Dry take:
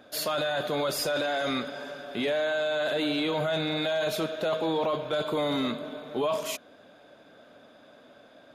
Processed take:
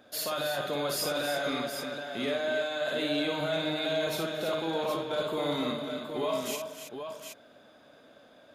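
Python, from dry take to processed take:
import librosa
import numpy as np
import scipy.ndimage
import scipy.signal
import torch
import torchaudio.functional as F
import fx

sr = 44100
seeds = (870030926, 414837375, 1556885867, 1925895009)

y = fx.high_shelf(x, sr, hz=5600.0, db=4.5)
y = fx.echo_multitap(y, sr, ms=(55, 229, 283, 322, 768), db=(-5.0, -19.5, -14.0, -8.5, -7.0))
y = y * 10.0 ** (-5.0 / 20.0)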